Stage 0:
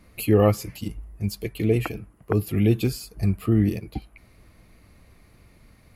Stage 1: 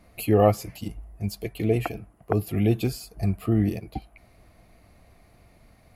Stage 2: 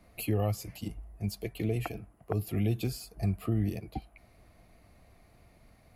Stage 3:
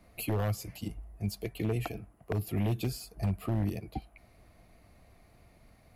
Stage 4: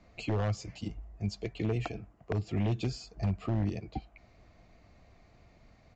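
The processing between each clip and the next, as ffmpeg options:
-af "equalizer=f=700:t=o:w=0.45:g=10.5,volume=0.75"
-filter_complex "[0:a]acrossover=split=140|3000[s0][s1][s2];[s1]acompressor=threshold=0.0501:ratio=6[s3];[s0][s3][s2]amix=inputs=3:normalize=0,volume=0.631"
-af "aeval=exprs='0.0794*(abs(mod(val(0)/0.0794+3,4)-2)-1)':c=same"
-af "aresample=16000,aresample=44100"

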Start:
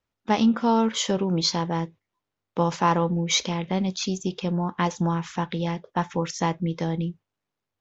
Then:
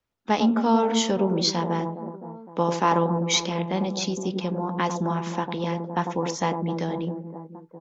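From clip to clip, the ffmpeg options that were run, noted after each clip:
-filter_complex "[0:a]acrossover=split=170|1100[s0][s1][s2];[s0]acompressor=threshold=0.00891:ratio=6[s3];[s1]aecho=1:1:100|260|516|925.6|1581:0.631|0.398|0.251|0.158|0.1[s4];[s3][s4][s2]amix=inputs=3:normalize=0"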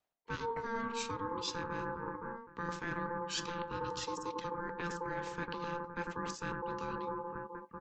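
-af "aeval=exprs='val(0)*sin(2*PI*690*n/s)':c=same,areverse,acompressor=threshold=0.0178:ratio=5,areverse,volume=0.891"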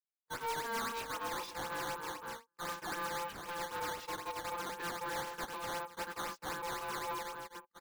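-filter_complex "[0:a]asplit=2[s0][s1];[s1]highpass=f=720:p=1,volume=28.2,asoftclip=type=tanh:threshold=0.0841[s2];[s0][s2]amix=inputs=2:normalize=0,lowpass=f=3900:p=1,volume=0.501,agate=range=0.00562:threshold=0.0355:ratio=16:detection=peak,acrusher=samples=10:mix=1:aa=0.000001:lfo=1:lforange=16:lforate=3.9,volume=0.501"

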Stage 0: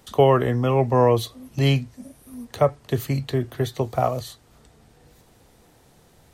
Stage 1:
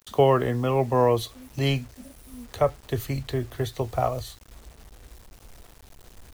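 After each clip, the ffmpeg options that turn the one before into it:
-af "asubboost=boost=11.5:cutoff=53,acrusher=bits=7:mix=0:aa=0.000001,volume=0.75"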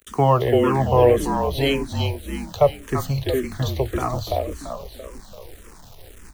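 -filter_complex "[0:a]asplit=2[s0][s1];[s1]asplit=6[s2][s3][s4][s5][s6][s7];[s2]adelay=338,afreqshift=-38,volume=0.596[s8];[s3]adelay=676,afreqshift=-76,volume=0.292[s9];[s4]adelay=1014,afreqshift=-114,volume=0.143[s10];[s5]adelay=1352,afreqshift=-152,volume=0.07[s11];[s6]adelay=1690,afreqshift=-190,volume=0.0343[s12];[s7]adelay=2028,afreqshift=-228,volume=0.0168[s13];[s8][s9][s10][s11][s12][s13]amix=inputs=6:normalize=0[s14];[s0][s14]amix=inputs=2:normalize=0,asplit=2[s15][s16];[s16]afreqshift=-1.8[s17];[s15][s17]amix=inputs=2:normalize=1,volume=2.11"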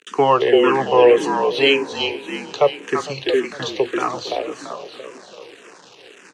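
-filter_complex "[0:a]highpass=f=210:w=0.5412,highpass=f=210:w=1.3066,equalizer=f=230:t=q:w=4:g=-9,equalizer=f=430:t=q:w=4:g=4,equalizer=f=640:t=q:w=4:g=-8,equalizer=f=1600:t=q:w=4:g=5,equalizer=f=2700:t=q:w=4:g=9,lowpass=f=7100:w=0.5412,lowpass=f=7100:w=1.3066,asplit=2[s0][s1];[s1]adelay=456,lowpass=f=2000:p=1,volume=0.126,asplit=2[s2][s3];[s3]adelay=456,lowpass=f=2000:p=1,volume=0.47,asplit=2[s4][s5];[s5]adelay=456,lowpass=f=2000:p=1,volume=0.47,asplit=2[s6][s7];[s7]adelay=456,lowpass=f=2000:p=1,volume=0.47[s8];[s0][s2][s4][s6][s8]amix=inputs=5:normalize=0,volume=1.58"

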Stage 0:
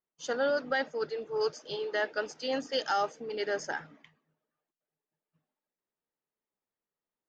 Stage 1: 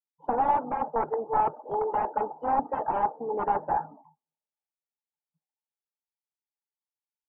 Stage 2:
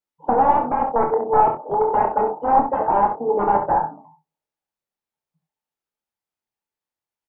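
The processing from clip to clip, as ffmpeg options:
-af "aeval=exprs='(mod(25.1*val(0)+1,2)-1)/25.1':c=same,lowpass=f=860:t=q:w=8.7,afftdn=nr=28:nf=-52,volume=1.5"
-filter_complex "[0:a]highshelf=f=2400:g=-9.5,asplit=2[s0][s1];[s1]adelay=25,volume=0.422[s2];[s0][s2]amix=inputs=2:normalize=0,asplit=2[s3][s4];[s4]aecho=0:1:34|68:0.335|0.376[s5];[s3][s5]amix=inputs=2:normalize=0,volume=2.66"

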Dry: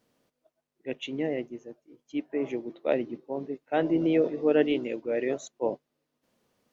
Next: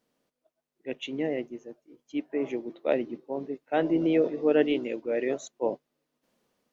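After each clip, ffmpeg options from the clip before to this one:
-af "equalizer=f=99:t=o:w=0.55:g=-11,dynaudnorm=f=290:g=5:m=1.78,volume=0.596"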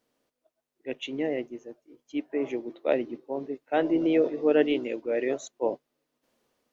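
-af "equalizer=f=180:t=o:w=0.32:g=-12,volume=1.12"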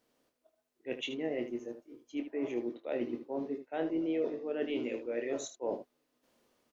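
-af "areverse,acompressor=threshold=0.0251:ratio=8,areverse,aecho=1:1:25|77:0.422|0.299"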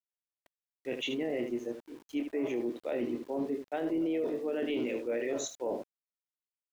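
-af "alimiter=level_in=2:limit=0.0631:level=0:latency=1:release=12,volume=0.501,aeval=exprs='val(0)*gte(abs(val(0)),0.00133)':c=same,volume=1.78"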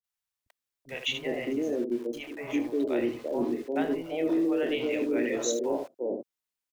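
-filter_complex "[0:a]acrossover=split=170|590[s0][s1][s2];[s2]adelay=40[s3];[s1]adelay=390[s4];[s0][s4][s3]amix=inputs=3:normalize=0,volume=2.11"

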